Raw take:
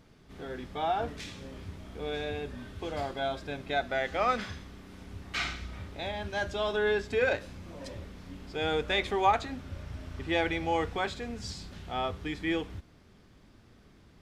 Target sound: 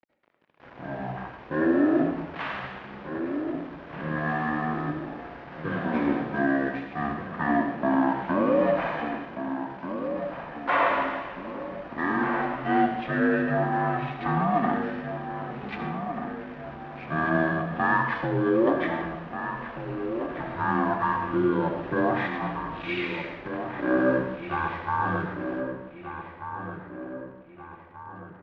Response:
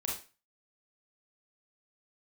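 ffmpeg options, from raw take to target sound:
-filter_complex "[0:a]acontrast=55,alimiter=limit=-18.5dB:level=0:latency=1:release=71,afreqshift=-130,aeval=exprs='sgn(val(0))*max(abs(val(0))-0.00501,0)':c=same,highpass=540,lowpass=5.3k,asplit=2[a][b];[b]adelay=768,lowpass=f=4k:p=1,volume=-8.5dB,asplit=2[c][d];[d]adelay=768,lowpass=f=4k:p=1,volume=0.5,asplit=2[e][f];[f]adelay=768,lowpass=f=4k:p=1,volume=0.5,asplit=2[g][h];[h]adelay=768,lowpass=f=4k:p=1,volume=0.5,asplit=2[i][j];[j]adelay=768,lowpass=f=4k:p=1,volume=0.5,asplit=2[k][l];[l]adelay=768,lowpass=f=4k:p=1,volume=0.5[m];[a][c][e][g][i][k][m]amix=inputs=7:normalize=0,asplit=2[n][o];[1:a]atrim=start_sample=2205,lowshelf=f=150:g=11.5[p];[o][p]afir=irnorm=-1:irlink=0,volume=-2dB[q];[n][q]amix=inputs=2:normalize=0,asetrate=22050,aresample=44100,volume=2dB"

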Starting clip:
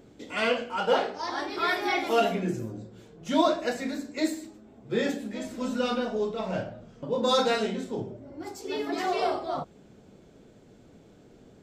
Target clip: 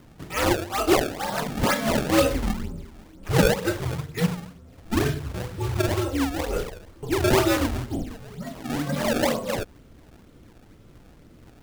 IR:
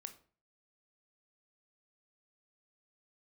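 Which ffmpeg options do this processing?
-af "afreqshift=-140,acrusher=samples=25:mix=1:aa=0.000001:lfo=1:lforange=40:lforate=2.1,volume=4dB"

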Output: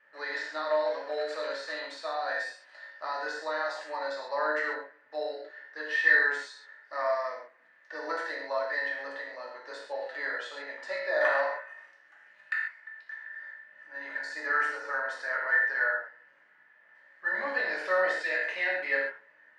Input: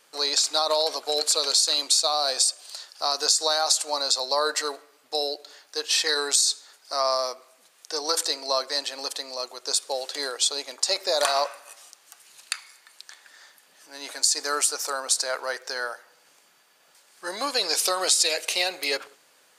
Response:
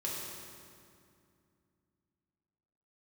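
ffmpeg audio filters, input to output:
-filter_complex "[0:a]lowpass=f=1.8k:t=q:w=8.8[a];[1:a]atrim=start_sample=2205,afade=t=out:st=0.29:d=0.01,atrim=end_sample=13230,asetrate=70560,aresample=44100[b];[a][b]afir=irnorm=-1:irlink=0,volume=-6.5dB"

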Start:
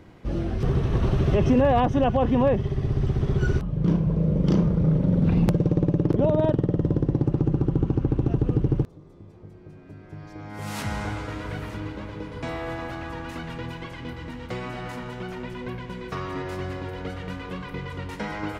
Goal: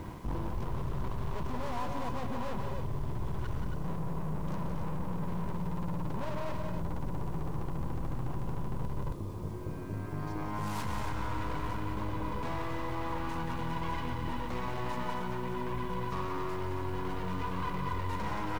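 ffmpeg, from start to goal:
-af "aeval=exprs='(tanh(56.2*val(0)+0.6)-tanh(0.6))/56.2':c=same,aecho=1:1:119|176|181|273|275:0.2|0.447|0.126|0.376|0.251,areverse,acompressor=threshold=-40dB:ratio=12,areverse,equalizer=f=1k:w=3.8:g=12.5,acontrast=39,lowshelf=f=240:g=6,acrusher=bits=9:mix=0:aa=0.000001"

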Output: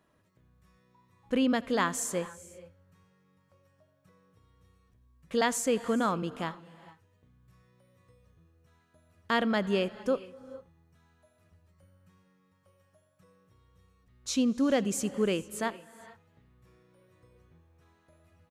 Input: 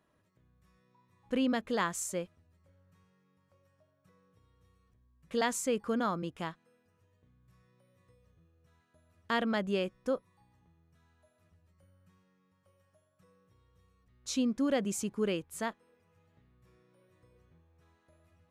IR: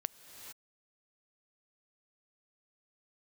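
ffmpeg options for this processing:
-filter_complex "[0:a]aecho=1:1:82:0.0668,asplit=2[a][b];[1:a]atrim=start_sample=2205[c];[b][c]afir=irnorm=-1:irlink=0,volume=-4.5dB[d];[a][d]amix=inputs=2:normalize=0"

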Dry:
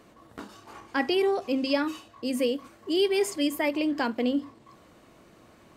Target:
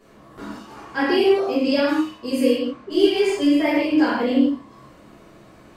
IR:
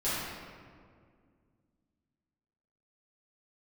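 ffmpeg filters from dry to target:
-filter_complex "[0:a]asettb=1/sr,asplit=3[a][b][c];[a]atrim=end=2.544[d];[b]atrim=start=2.54:end=3.62,asetpts=PTS-STARTPTS,afade=t=in:d=0.004:c=qsin,afade=t=out:st=1.076:d=0.004:c=qsin,adynamicsmooth=sensitivity=6:basefreq=4.5k[e];[c]atrim=start=3.616[f];[d][e]acrossfade=d=0.004:c1=hsin:c2=qsin[g];[g][f]acrossfade=d=0.004:c1=qsin:c2=hsin[h];[1:a]atrim=start_sample=2205,afade=t=out:st=0.24:d=0.01,atrim=end_sample=11025[i];[h][i]afir=irnorm=-1:irlink=0,volume=-1.5dB"

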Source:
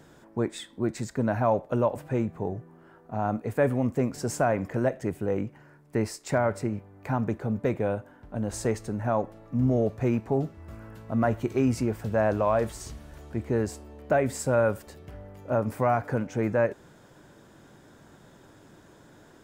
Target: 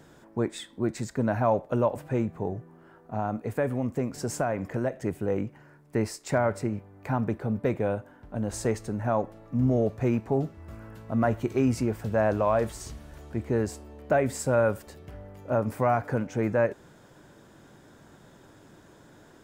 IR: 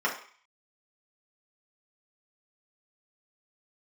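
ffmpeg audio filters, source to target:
-filter_complex "[0:a]asettb=1/sr,asplit=3[a][b][c];[a]atrim=end=3.194[d];[b]atrim=start=3.19:end=5,asetpts=PTS-STARTPTS,afade=t=in:d=0.004:c=qsin,afade=t=out:st=1.806:d=0.004:c=qsin,acompressor=threshold=-26dB:ratio=2[e];[c]atrim=start=4.996[f];[d][e]acrossfade=d=0.004:c1=hsin:c2=qsin[g];[g][f]acrossfade=d=0.004:c1=qsin:c2=hsin,asettb=1/sr,asplit=3[h][i][j];[h]atrim=end=7.094[k];[i]atrim=start=7.09:end=7.7,asetpts=PTS-STARTPTS,afade=t=in:d=0.004:c=qsin,afade=t=out:st=0.606:d=0.004:c=qsin,equalizer=f=6.7k:w=6.6:g=-8.5[l];[j]atrim=start=7.696[m];[k][l]acrossfade=d=0.004:c1=hsin:c2=qsin[n];[n][m]acrossfade=d=0.004:c1=qsin:c2=hsin"

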